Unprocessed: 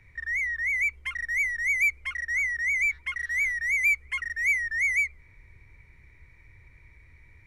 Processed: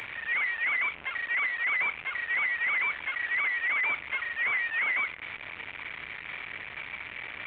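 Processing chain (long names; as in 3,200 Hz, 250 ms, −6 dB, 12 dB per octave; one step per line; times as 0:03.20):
linear delta modulator 16 kbit/s, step −27 dBFS
high-pass filter 1,300 Hz 6 dB per octave
rectangular room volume 200 cubic metres, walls furnished, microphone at 0.37 metres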